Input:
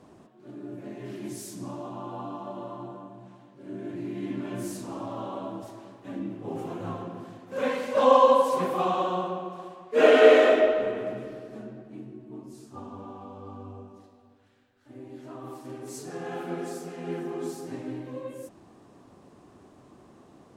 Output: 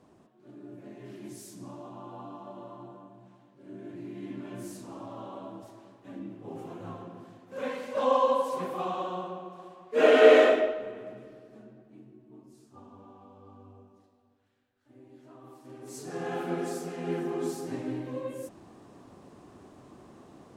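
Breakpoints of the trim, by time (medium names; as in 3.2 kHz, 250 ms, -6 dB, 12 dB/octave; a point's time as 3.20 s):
9.56 s -6.5 dB
10.41 s 0 dB
10.80 s -10 dB
15.57 s -10 dB
16.21 s +1.5 dB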